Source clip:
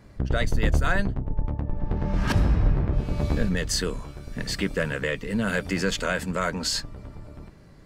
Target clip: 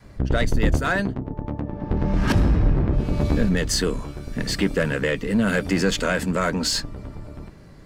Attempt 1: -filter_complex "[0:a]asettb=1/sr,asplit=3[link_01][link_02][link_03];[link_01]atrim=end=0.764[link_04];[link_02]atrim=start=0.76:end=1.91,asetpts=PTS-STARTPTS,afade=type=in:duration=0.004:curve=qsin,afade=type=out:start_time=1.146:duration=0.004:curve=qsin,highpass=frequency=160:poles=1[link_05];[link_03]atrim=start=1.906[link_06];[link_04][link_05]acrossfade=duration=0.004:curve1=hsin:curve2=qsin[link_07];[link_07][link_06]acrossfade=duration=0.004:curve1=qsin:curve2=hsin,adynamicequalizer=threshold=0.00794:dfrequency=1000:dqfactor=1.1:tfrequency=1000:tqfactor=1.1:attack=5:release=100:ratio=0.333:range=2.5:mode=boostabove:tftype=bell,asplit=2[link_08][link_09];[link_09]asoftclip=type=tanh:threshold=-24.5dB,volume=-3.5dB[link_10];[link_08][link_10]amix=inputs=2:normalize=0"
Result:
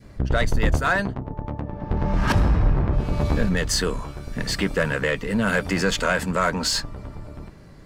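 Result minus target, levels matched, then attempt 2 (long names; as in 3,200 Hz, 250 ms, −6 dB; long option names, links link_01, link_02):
1,000 Hz band +3.5 dB
-filter_complex "[0:a]asettb=1/sr,asplit=3[link_01][link_02][link_03];[link_01]atrim=end=0.764[link_04];[link_02]atrim=start=0.76:end=1.91,asetpts=PTS-STARTPTS,afade=type=in:duration=0.004:curve=qsin,afade=type=out:start_time=1.146:duration=0.004:curve=qsin,highpass=frequency=160:poles=1[link_05];[link_03]atrim=start=1.906[link_06];[link_04][link_05]acrossfade=duration=0.004:curve1=hsin:curve2=qsin[link_07];[link_07][link_06]acrossfade=duration=0.004:curve1=qsin:curve2=hsin,adynamicequalizer=threshold=0.00794:dfrequency=290:dqfactor=1.1:tfrequency=290:tqfactor=1.1:attack=5:release=100:ratio=0.333:range=2.5:mode=boostabove:tftype=bell,asplit=2[link_08][link_09];[link_09]asoftclip=type=tanh:threshold=-24.5dB,volume=-3.5dB[link_10];[link_08][link_10]amix=inputs=2:normalize=0"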